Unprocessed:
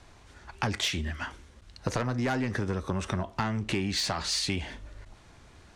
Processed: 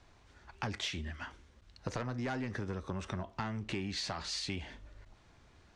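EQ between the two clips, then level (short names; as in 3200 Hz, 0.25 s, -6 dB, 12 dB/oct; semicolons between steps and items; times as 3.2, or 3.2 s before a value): LPF 7100 Hz 12 dB/oct; -8.0 dB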